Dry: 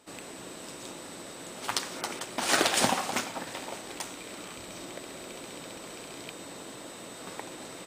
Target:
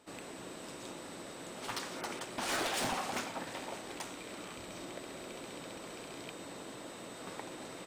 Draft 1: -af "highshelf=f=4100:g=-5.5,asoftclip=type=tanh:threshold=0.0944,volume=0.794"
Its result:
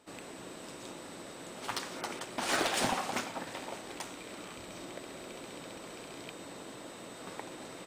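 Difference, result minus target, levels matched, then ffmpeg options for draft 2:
saturation: distortion -6 dB
-af "highshelf=f=4100:g=-5.5,asoftclip=type=tanh:threshold=0.0376,volume=0.794"

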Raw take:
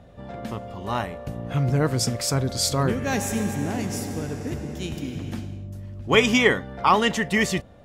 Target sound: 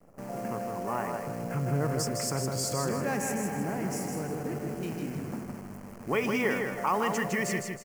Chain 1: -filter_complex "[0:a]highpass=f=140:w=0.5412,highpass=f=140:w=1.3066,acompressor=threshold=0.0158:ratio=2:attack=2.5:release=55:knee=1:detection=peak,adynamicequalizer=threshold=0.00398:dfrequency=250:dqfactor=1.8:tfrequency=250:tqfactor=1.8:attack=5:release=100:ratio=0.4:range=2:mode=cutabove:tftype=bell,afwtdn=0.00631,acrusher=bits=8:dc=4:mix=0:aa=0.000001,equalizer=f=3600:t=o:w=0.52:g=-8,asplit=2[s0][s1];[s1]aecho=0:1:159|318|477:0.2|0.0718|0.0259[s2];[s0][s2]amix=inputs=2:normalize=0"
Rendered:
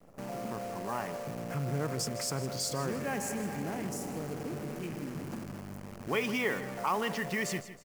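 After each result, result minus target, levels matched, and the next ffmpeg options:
echo-to-direct -9 dB; 4 kHz band +3.5 dB; compression: peak gain reduction +3.5 dB
-filter_complex "[0:a]highpass=f=140:w=0.5412,highpass=f=140:w=1.3066,acompressor=threshold=0.0158:ratio=2:attack=2.5:release=55:knee=1:detection=peak,adynamicequalizer=threshold=0.00398:dfrequency=250:dqfactor=1.8:tfrequency=250:tqfactor=1.8:attack=5:release=100:ratio=0.4:range=2:mode=cutabove:tftype=bell,afwtdn=0.00631,acrusher=bits=8:dc=4:mix=0:aa=0.000001,equalizer=f=3600:t=o:w=0.52:g=-8,asplit=2[s0][s1];[s1]aecho=0:1:159|318|477|636:0.562|0.202|0.0729|0.0262[s2];[s0][s2]amix=inputs=2:normalize=0"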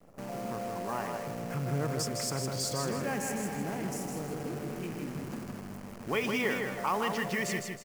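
4 kHz band +3.5 dB; compression: peak gain reduction +3.5 dB
-filter_complex "[0:a]highpass=f=140:w=0.5412,highpass=f=140:w=1.3066,acompressor=threshold=0.0158:ratio=2:attack=2.5:release=55:knee=1:detection=peak,adynamicequalizer=threshold=0.00398:dfrequency=250:dqfactor=1.8:tfrequency=250:tqfactor=1.8:attack=5:release=100:ratio=0.4:range=2:mode=cutabove:tftype=bell,afwtdn=0.00631,acrusher=bits=8:dc=4:mix=0:aa=0.000001,equalizer=f=3600:t=o:w=0.52:g=-19.5,asplit=2[s0][s1];[s1]aecho=0:1:159|318|477|636:0.562|0.202|0.0729|0.0262[s2];[s0][s2]amix=inputs=2:normalize=0"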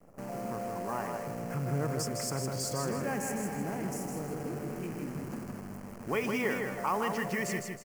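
compression: peak gain reduction +3.5 dB
-filter_complex "[0:a]highpass=f=140:w=0.5412,highpass=f=140:w=1.3066,acompressor=threshold=0.0335:ratio=2:attack=2.5:release=55:knee=1:detection=peak,adynamicequalizer=threshold=0.00398:dfrequency=250:dqfactor=1.8:tfrequency=250:tqfactor=1.8:attack=5:release=100:ratio=0.4:range=2:mode=cutabove:tftype=bell,afwtdn=0.00631,acrusher=bits=8:dc=4:mix=0:aa=0.000001,equalizer=f=3600:t=o:w=0.52:g=-19.5,asplit=2[s0][s1];[s1]aecho=0:1:159|318|477|636:0.562|0.202|0.0729|0.0262[s2];[s0][s2]amix=inputs=2:normalize=0"

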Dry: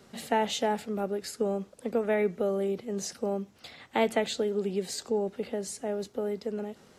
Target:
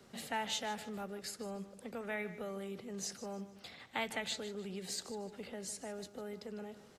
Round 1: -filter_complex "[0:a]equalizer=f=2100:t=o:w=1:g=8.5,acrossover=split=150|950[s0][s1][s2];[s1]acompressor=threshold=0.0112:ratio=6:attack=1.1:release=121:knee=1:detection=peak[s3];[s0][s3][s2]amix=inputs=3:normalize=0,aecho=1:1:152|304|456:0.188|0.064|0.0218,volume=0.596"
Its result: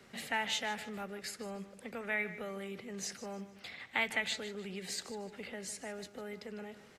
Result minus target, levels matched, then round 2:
2 kHz band +4.5 dB
-filter_complex "[0:a]acrossover=split=150|950[s0][s1][s2];[s1]acompressor=threshold=0.0112:ratio=6:attack=1.1:release=121:knee=1:detection=peak[s3];[s0][s3][s2]amix=inputs=3:normalize=0,aecho=1:1:152|304|456:0.188|0.064|0.0218,volume=0.596"

